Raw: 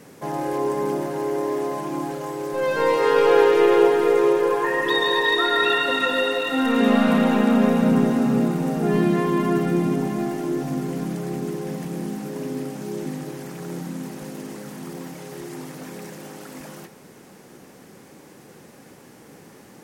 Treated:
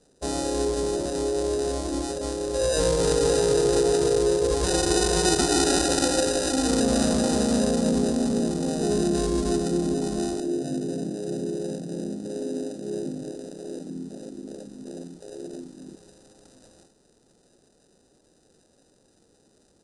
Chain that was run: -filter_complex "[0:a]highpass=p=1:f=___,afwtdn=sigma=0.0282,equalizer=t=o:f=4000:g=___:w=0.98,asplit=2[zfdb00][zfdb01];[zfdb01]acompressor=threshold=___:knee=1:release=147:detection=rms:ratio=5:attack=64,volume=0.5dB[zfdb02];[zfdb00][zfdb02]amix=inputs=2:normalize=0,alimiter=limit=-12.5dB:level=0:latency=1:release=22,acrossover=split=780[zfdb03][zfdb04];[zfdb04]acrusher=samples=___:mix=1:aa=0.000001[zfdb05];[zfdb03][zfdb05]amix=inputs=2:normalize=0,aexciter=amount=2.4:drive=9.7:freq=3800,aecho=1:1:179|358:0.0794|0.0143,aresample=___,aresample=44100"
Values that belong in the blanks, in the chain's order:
590, -14.5, -33dB, 40, 22050